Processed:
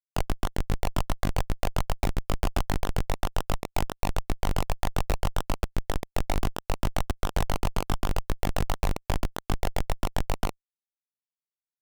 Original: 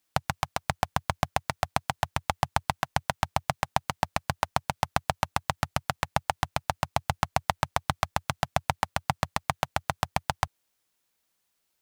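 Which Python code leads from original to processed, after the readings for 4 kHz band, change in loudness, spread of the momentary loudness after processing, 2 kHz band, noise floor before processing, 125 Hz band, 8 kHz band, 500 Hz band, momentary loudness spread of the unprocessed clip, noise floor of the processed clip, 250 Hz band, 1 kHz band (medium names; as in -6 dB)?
-2.5 dB, -1.0 dB, 2 LU, -5.5 dB, -77 dBFS, +2.5 dB, -1.5 dB, +1.0 dB, 2 LU, under -85 dBFS, +4.5 dB, -6.0 dB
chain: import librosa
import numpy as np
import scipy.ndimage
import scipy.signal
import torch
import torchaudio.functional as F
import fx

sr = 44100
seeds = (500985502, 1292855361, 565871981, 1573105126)

y = fx.room_flutter(x, sr, wall_m=3.5, rt60_s=0.5)
y = fx.schmitt(y, sr, flips_db=-18.5)
y = F.gain(torch.from_numpy(y), 6.0).numpy()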